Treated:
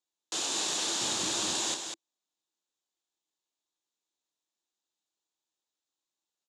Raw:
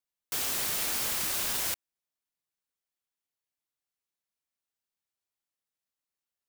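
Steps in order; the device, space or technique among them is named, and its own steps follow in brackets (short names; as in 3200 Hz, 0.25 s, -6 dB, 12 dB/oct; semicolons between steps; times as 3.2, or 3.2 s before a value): full-range speaker at full volume (Doppler distortion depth 0.39 ms; speaker cabinet 220–7700 Hz, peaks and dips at 330 Hz +9 dB, 880 Hz +4 dB, 1400 Hz -3 dB, 3700 Hz +7 dB, 7000 Hz +8 dB); 1.01–1.55 bell 97 Hz +13 dB 2.2 oct; bell 2100 Hz -7.5 dB 0.41 oct; loudspeakers at several distances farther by 11 m -9 dB, 68 m -6 dB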